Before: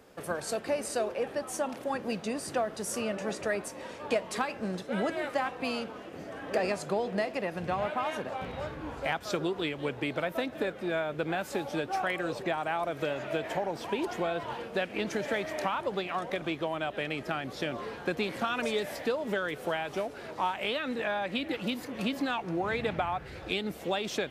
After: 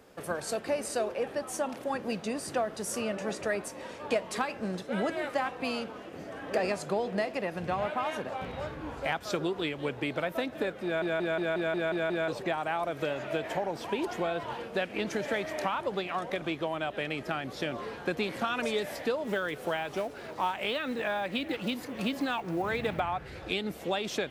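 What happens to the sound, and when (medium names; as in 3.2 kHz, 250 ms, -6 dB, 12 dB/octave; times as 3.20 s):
10.84 s: stutter in place 0.18 s, 8 plays
19.24–23.00 s: short-mantissa float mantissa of 4-bit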